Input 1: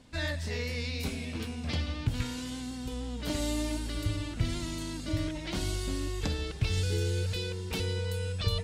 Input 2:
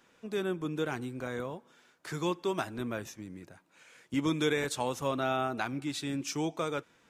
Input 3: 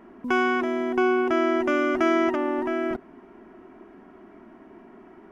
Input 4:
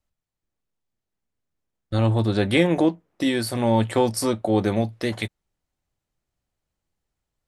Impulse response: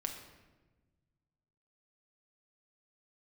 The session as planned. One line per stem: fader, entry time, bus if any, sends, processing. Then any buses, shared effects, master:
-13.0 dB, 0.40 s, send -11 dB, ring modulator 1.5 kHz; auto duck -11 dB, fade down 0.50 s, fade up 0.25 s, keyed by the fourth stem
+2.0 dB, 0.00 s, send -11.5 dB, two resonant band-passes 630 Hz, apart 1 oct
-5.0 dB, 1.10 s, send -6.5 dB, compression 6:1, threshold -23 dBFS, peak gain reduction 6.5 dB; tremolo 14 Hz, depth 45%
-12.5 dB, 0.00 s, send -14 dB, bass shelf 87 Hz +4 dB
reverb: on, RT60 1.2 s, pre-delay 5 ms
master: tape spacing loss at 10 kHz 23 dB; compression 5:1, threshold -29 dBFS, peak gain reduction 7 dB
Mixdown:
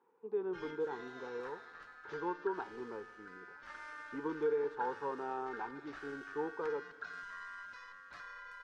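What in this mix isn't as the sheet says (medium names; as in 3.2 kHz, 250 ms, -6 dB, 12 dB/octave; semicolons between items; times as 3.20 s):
stem 3: muted; stem 4: muted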